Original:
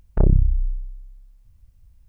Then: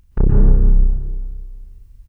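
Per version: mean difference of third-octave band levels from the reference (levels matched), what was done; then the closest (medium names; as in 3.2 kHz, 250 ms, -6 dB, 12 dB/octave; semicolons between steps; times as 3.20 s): 8.0 dB: peaking EQ 640 Hz -13 dB 0.39 oct; doubling 35 ms -12 dB; plate-style reverb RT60 1.7 s, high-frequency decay 0.75×, pre-delay 110 ms, DRR -3 dB; trim +1.5 dB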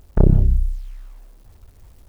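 5.0 dB: peaking EQ 210 Hz +5 dB 2.4 oct; in parallel at -2.5 dB: peak limiter -12 dBFS, peak gain reduction 10 dB; on the sum: bit crusher 9-bit; gated-style reverb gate 200 ms rising, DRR 11 dB; trim -1 dB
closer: second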